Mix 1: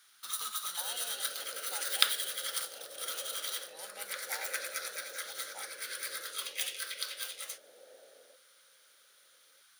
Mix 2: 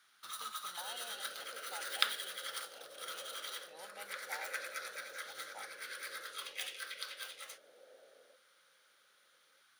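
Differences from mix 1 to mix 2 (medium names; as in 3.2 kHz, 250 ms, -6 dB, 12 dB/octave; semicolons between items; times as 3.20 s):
second sound -3.5 dB; master: add treble shelf 3.8 kHz -12 dB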